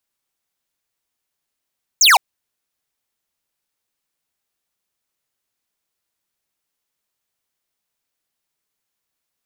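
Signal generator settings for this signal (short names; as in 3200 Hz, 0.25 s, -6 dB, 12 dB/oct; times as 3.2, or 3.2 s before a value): laser zap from 7600 Hz, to 710 Hz, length 0.16 s square, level -10 dB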